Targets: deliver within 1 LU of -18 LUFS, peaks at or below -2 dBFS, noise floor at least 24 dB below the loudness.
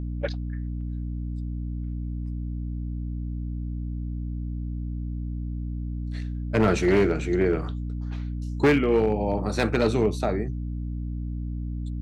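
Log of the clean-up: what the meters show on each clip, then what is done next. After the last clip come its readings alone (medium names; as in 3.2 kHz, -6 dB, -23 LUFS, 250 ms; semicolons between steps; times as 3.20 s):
clipped samples 0.7%; clipping level -14.0 dBFS; hum 60 Hz; highest harmonic 300 Hz; hum level -28 dBFS; loudness -27.5 LUFS; peak level -14.0 dBFS; loudness target -18.0 LUFS
-> clip repair -14 dBFS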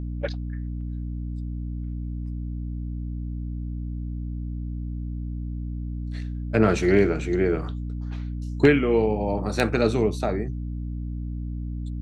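clipped samples 0.0%; hum 60 Hz; highest harmonic 300 Hz; hum level -28 dBFS
-> hum notches 60/120/180/240/300 Hz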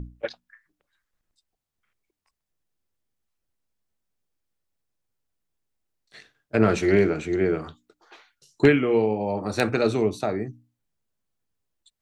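hum not found; loudness -23.0 LUFS; peak level -4.0 dBFS; loudness target -18.0 LUFS
-> trim +5 dB; peak limiter -2 dBFS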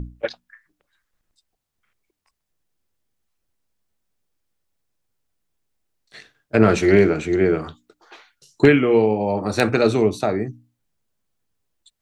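loudness -18.5 LUFS; peak level -2.0 dBFS; noise floor -79 dBFS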